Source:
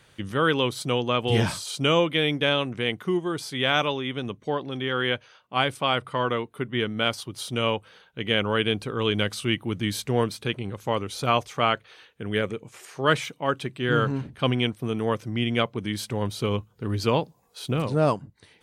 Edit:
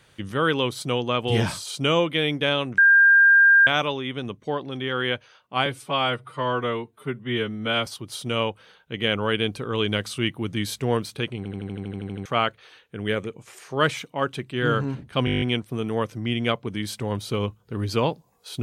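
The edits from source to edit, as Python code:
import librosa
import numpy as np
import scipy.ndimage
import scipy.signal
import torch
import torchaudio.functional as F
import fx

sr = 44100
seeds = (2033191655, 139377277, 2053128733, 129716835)

y = fx.edit(x, sr, fx.bleep(start_s=2.78, length_s=0.89, hz=1600.0, db=-11.0),
    fx.stretch_span(start_s=5.66, length_s=1.47, factor=1.5),
    fx.stutter_over(start_s=10.64, slice_s=0.08, count=11),
    fx.stutter(start_s=14.52, slice_s=0.02, count=9), tone=tone)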